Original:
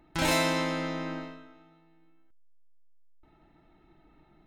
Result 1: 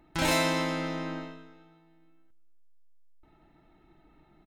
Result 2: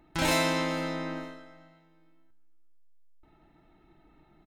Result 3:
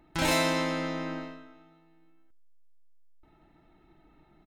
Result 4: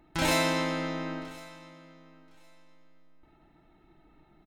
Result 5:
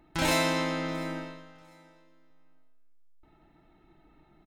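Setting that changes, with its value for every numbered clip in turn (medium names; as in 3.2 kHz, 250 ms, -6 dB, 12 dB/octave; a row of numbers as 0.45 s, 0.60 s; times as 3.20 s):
feedback delay, time: 291 ms, 460 ms, 88 ms, 1062 ms, 699 ms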